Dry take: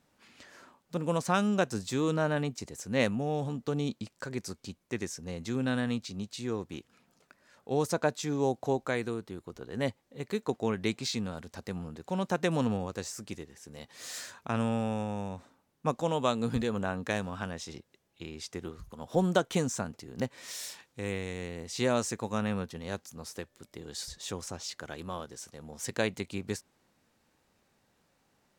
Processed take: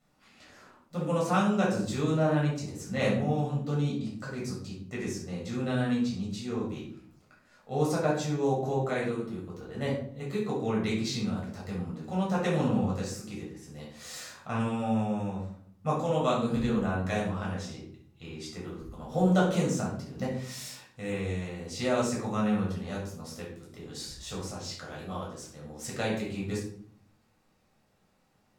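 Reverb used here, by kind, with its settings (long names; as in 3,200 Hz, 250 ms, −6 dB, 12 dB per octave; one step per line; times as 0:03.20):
rectangular room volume 810 cubic metres, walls furnished, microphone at 6.7 metres
level −8 dB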